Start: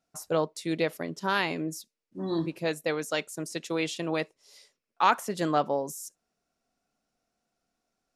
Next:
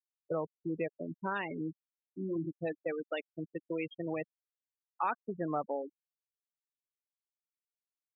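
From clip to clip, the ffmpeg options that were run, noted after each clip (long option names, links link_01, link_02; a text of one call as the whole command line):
ffmpeg -i in.wav -af "afftfilt=real='re*gte(hypot(re,im),0.0794)':imag='im*gte(hypot(re,im),0.0794)':win_size=1024:overlap=0.75,acompressor=threshold=-31dB:ratio=2,volume=-3dB" out.wav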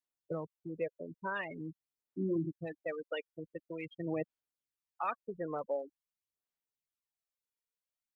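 ffmpeg -i in.wav -af "aphaser=in_gain=1:out_gain=1:delay=2.1:decay=0.55:speed=0.46:type=sinusoidal,volume=-3.5dB" out.wav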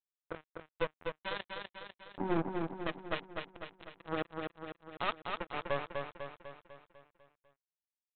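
ffmpeg -i in.wav -af "aeval=exprs='0.0841*(cos(1*acos(clip(val(0)/0.0841,-1,1)))-cos(1*PI/2))+0.00596*(cos(6*acos(clip(val(0)/0.0841,-1,1)))-cos(6*PI/2))':channel_layout=same,aresample=8000,acrusher=bits=4:mix=0:aa=0.5,aresample=44100,aecho=1:1:249|498|747|996|1245|1494|1743:0.596|0.328|0.18|0.0991|0.0545|0.03|0.0165,volume=1dB" out.wav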